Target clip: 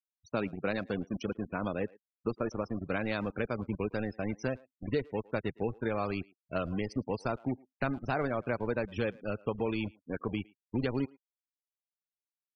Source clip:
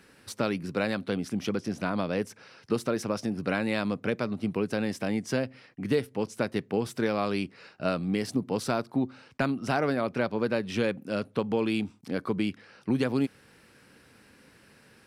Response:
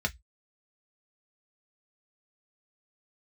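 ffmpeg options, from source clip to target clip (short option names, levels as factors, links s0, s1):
-filter_complex "[0:a]asplit=2[s0][s1];[s1]acrusher=bits=4:mix=0:aa=0.000001,volume=0.668[s2];[s0][s2]amix=inputs=2:normalize=0,atempo=1.2,afftfilt=real='re*gte(hypot(re,im),0.0355)':imag='im*gte(hypot(re,im),0.0355)':win_size=1024:overlap=0.75,asubboost=boost=4.5:cutoff=81,asplit=2[s3][s4];[s4]adelay=110,highpass=300,lowpass=3400,asoftclip=type=hard:threshold=0.119,volume=0.0708[s5];[s3][s5]amix=inputs=2:normalize=0,volume=0.398"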